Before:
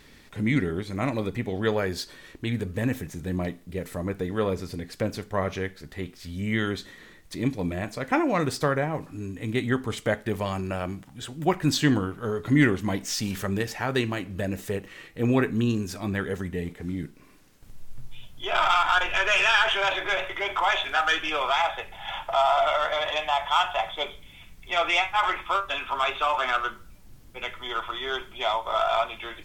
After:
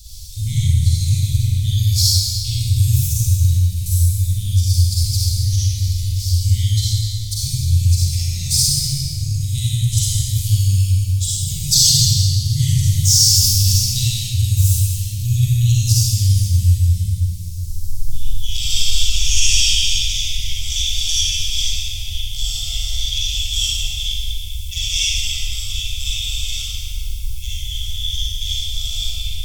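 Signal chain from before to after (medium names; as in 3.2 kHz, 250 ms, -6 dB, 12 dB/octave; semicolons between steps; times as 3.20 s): inverse Chebyshev band-stop 260–1700 Hz, stop band 60 dB; reverberation RT60 3.0 s, pre-delay 36 ms, DRR -9.5 dB; loudness maximiser +18 dB; trim -1 dB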